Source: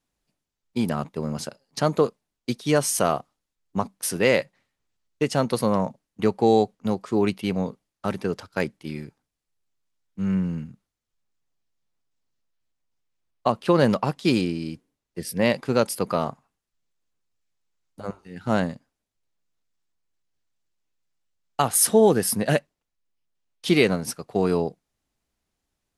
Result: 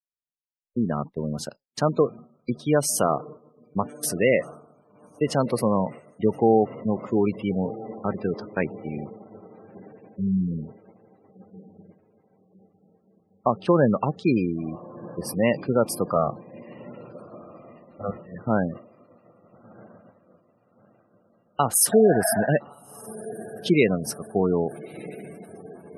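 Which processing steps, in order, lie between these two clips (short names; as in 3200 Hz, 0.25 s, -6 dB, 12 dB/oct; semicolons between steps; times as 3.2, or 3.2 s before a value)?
16.16–18.4 comb 1.6 ms, depth 87%; 21.95–22.44 spectral repair 620–2600 Hz after; on a send: diffused feedback echo 1.309 s, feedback 71%, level -16 dB; on the sum: expander -32 dBFS; spectral gate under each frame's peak -20 dB strong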